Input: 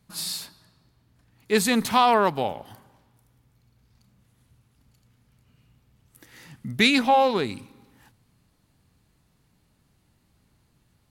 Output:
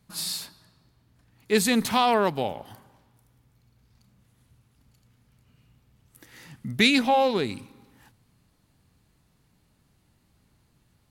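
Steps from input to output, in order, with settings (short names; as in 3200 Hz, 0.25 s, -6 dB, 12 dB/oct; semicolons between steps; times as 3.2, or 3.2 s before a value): dynamic EQ 1100 Hz, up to -5 dB, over -32 dBFS, Q 1.2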